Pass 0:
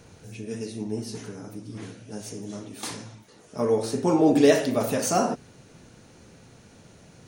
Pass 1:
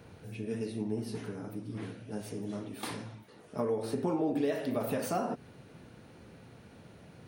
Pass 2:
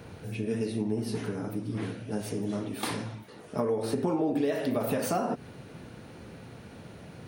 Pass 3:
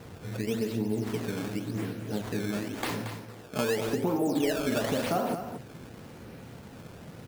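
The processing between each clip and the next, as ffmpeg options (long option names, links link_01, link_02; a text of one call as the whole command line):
ffmpeg -i in.wav -af "acompressor=threshold=-27dB:ratio=5,highpass=53,equalizer=frequency=6600:width_type=o:width=0.86:gain=-14.5,volume=-1.5dB" out.wav
ffmpeg -i in.wav -af "acompressor=threshold=-34dB:ratio=2,volume=7dB" out.wav
ffmpeg -i in.wav -filter_complex "[0:a]acrusher=samples=13:mix=1:aa=0.000001:lfo=1:lforange=20.8:lforate=0.91,asplit=2[link_01][link_02];[link_02]aecho=0:1:228:0.335[link_03];[link_01][link_03]amix=inputs=2:normalize=0" out.wav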